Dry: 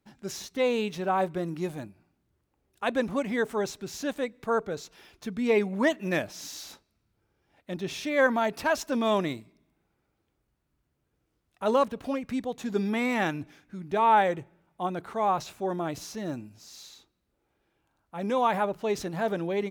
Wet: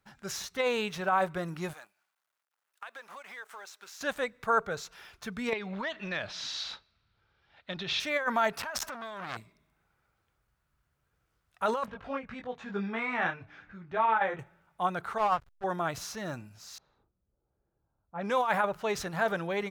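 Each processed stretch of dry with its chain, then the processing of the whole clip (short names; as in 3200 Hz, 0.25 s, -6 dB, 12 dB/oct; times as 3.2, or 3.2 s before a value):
1.73–4.01 G.711 law mismatch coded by A + Bessel high-pass 830 Hz + compressor, threshold -45 dBFS
5.53–8 compressor 16:1, threshold -30 dBFS + synth low-pass 3900 Hz, resonance Q 2.8
8.61–9.37 negative-ratio compressor -35 dBFS + core saturation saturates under 3400 Hz
11.86–14.39 LPF 2900 Hz + upward compressor, threshold -41 dBFS + detuned doubles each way 10 cents
15.18–15.64 LPF 5600 Hz + backlash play -29 dBFS + upward expander, over -37 dBFS
16.78–18.53 block floating point 7-bit + low-pass opened by the level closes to 450 Hz, open at -25 dBFS + hard clip -15 dBFS
whole clip: bell 290 Hz -11 dB 1.1 oct; negative-ratio compressor -27 dBFS, ratio -0.5; bell 1400 Hz +7 dB 0.83 oct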